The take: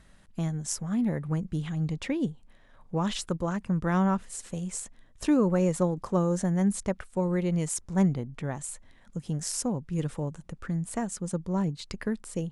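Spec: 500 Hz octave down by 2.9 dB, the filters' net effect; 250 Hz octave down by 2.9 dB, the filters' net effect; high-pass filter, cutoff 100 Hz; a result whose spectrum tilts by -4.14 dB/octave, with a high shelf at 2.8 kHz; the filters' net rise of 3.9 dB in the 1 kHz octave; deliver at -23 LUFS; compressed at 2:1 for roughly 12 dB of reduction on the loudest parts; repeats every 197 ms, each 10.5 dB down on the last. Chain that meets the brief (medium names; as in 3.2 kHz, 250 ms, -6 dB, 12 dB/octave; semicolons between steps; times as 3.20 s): high-pass 100 Hz; peaking EQ 250 Hz -3.5 dB; peaking EQ 500 Hz -4 dB; peaking EQ 1 kHz +5 dB; treble shelf 2.8 kHz +8 dB; compression 2:1, threshold -44 dBFS; feedback delay 197 ms, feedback 30%, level -10.5 dB; trim +16.5 dB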